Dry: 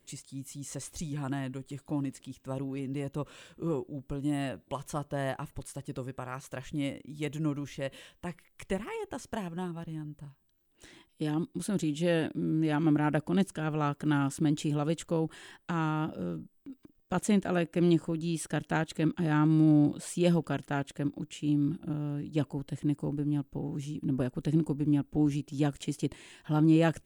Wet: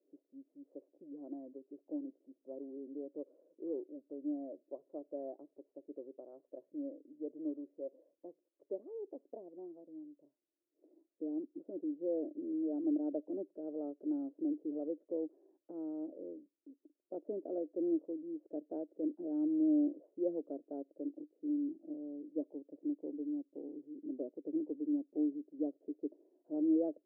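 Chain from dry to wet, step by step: Chebyshev band-pass 290–620 Hz, order 3; gain -5.5 dB

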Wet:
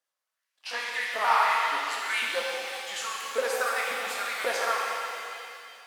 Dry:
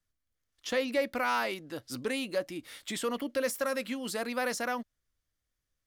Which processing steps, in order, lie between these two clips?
repeated pitch sweeps -3.5 st, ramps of 0.178 s; LFO high-pass saw up 1.8 Hz 550–2500 Hz; shimmer reverb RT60 2.5 s, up +7 st, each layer -8 dB, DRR -3 dB

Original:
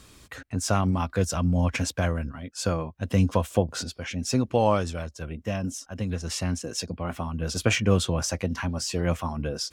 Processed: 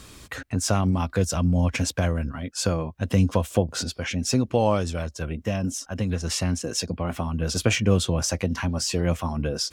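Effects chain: dynamic EQ 1300 Hz, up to -4 dB, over -36 dBFS, Q 0.8; in parallel at 0 dB: compressor, threshold -32 dBFS, peak gain reduction 15.5 dB

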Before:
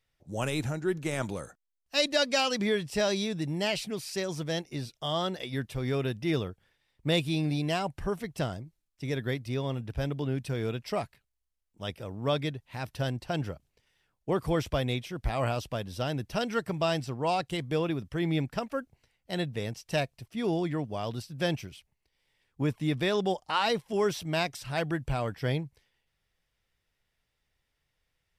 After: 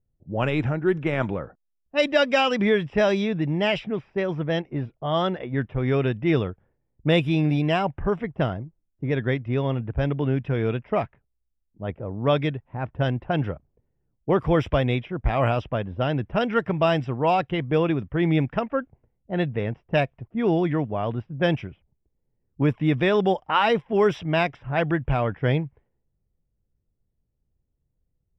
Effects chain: vibrato 6.7 Hz 20 cents; polynomial smoothing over 25 samples; low-pass opened by the level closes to 300 Hz, open at -24 dBFS; gain +7.5 dB

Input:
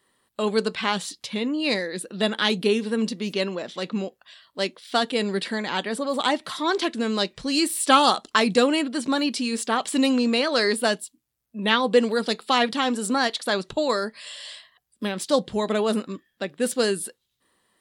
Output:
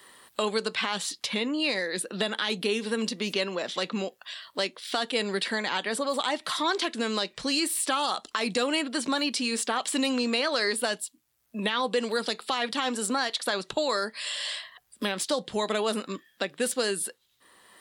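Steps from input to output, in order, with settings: low shelf 390 Hz -10.5 dB; in parallel at +2 dB: compressor, threshold -33 dBFS, peak gain reduction 19 dB; on the sum: limiter -13 dBFS, peak gain reduction 10 dB; three-band squash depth 40%; gain -3 dB

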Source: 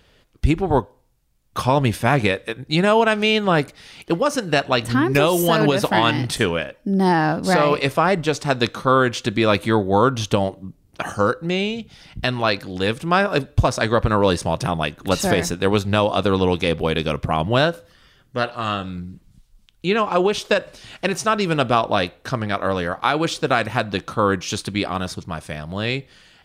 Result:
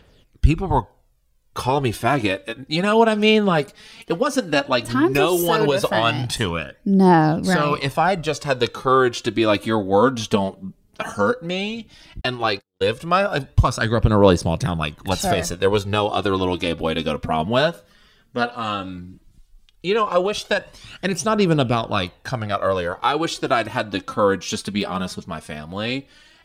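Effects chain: dynamic EQ 2000 Hz, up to -6 dB, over -40 dBFS, Q 4.7; phaser 0.14 Hz, delay 5 ms, feedback 54%; 12.21–12.98 gate -23 dBFS, range -53 dB; gain -2 dB

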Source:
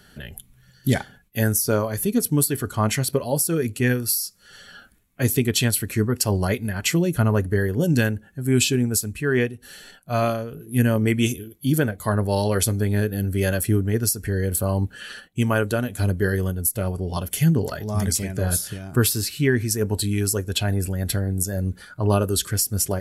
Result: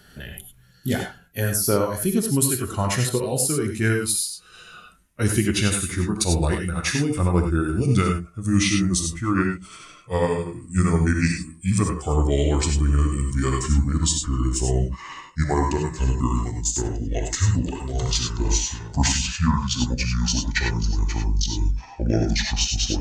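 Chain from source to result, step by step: gliding pitch shift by -11 st starting unshifted; non-linear reverb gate 0.12 s rising, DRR 3 dB

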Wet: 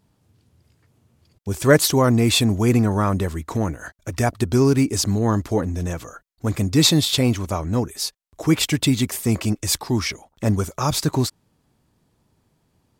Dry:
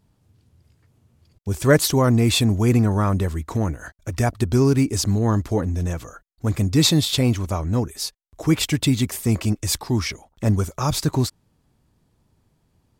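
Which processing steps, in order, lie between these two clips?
low shelf 92 Hz -9 dB; gain +2 dB

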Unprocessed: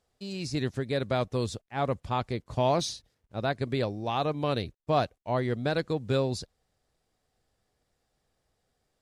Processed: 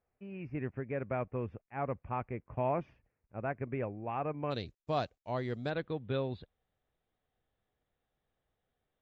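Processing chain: elliptic low-pass 2500 Hz, stop band 40 dB, from 4.5 s 7300 Hz, from 5.69 s 3600 Hz; gain -6.5 dB

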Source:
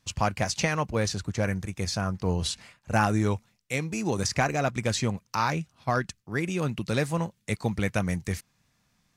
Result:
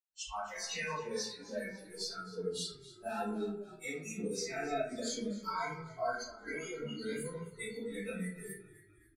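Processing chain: bin magnitudes rounded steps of 15 dB; 4.92–7.22 ripple EQ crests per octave 1.8, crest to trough 12 dB; spectral noise reduction 26 dB; limiter -25 dBFS, peak gain reduction 13 dB; low shelf 130 Hz -8 dB; comb 4.5 ms, depth 93%; frequency-shifting echo 0.268 s, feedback 58%, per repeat -39 Hz, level -17.5 dB; reverb RT60 0.60 s, pre-delay 85 ms; gain +10 dB

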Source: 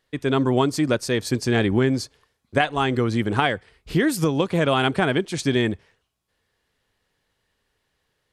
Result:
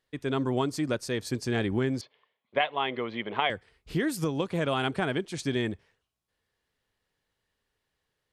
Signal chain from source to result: 2.01–3.5 speaker cabinet 260–3500 Hz, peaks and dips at 300 Hz -8 dB, 610 Hz +5 dB, 1000 Hz +5 dB, 1500 Hz -5 dB, 2100 Hz +7 dB, 3200 Hz +7 dB; gain -8 dB

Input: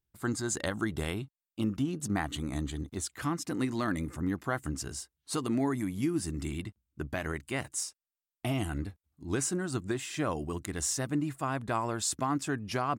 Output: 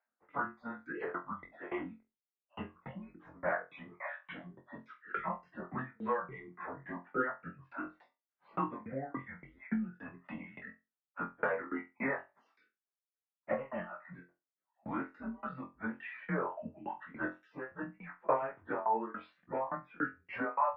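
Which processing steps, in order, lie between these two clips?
random spectral dropouts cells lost 24%; reverb removal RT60 0.63 s; compressor 8:1, threshold -36 dBFS, peak gain reduction 10.5 dB; plain phase-vocoder stretch 1.6×; tremolo saw down 3.5 Hz, depth 100%; on a send: flutter echo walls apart 3.9 m, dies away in 0.23 s; on the sum: mistuned SSB -130 Hz 450–2100 Hz; gain +15.5 dB

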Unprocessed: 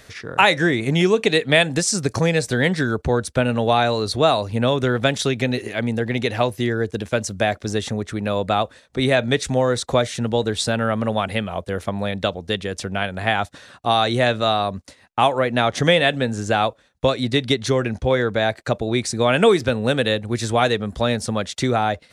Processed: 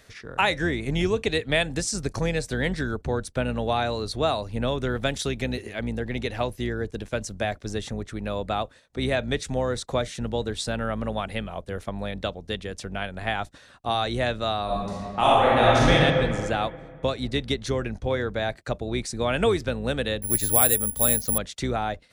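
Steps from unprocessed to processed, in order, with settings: octaver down 2 oct, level -5 dB; 4.9–5.59 high shelf 7900 Hz +5.5 dB; 14.64–15.91 reverb throw, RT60 2.2 s, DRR -7.5 dB; 20.22–21.38 careless resampling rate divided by 4×, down filtered, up zero stuff; gain -7.5 dB

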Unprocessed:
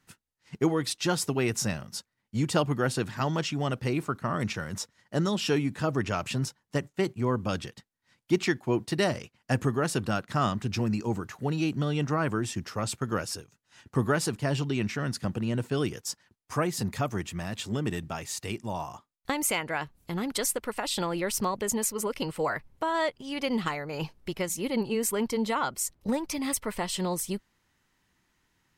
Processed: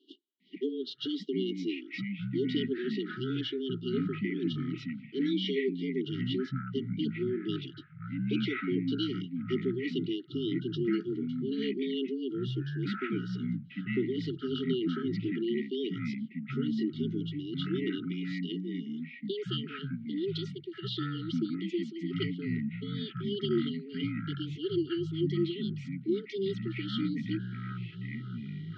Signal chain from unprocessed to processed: reverse; upward compressor, threshold -34 dBFS; reverse; mistuned SSB +120 Hz 160–3600 Hz; brick-wall FIR band-stop 430–2800 Hz; echoes that change speed 0.401 s, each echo -7 st, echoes 2

